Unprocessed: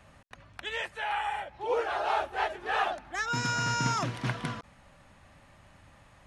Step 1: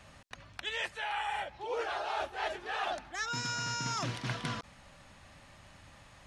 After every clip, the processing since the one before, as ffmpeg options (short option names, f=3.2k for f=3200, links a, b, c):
-af "equalizer=f=5k:w=0.67:g=7,areverse,acompressor=threshold=-32dB:ratio=6,areverse"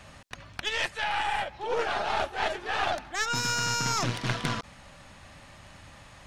-af "aeval=exprs='0.0944*(cos(1*acos(clip(val(0)/0.0944,-1,1)))-cos(1*PI/2))+0.0168*(cos(4*acos(clip(val(0)/0.0944,-1,1)))-cos(4*PI/2))':c=same,volume=6dB"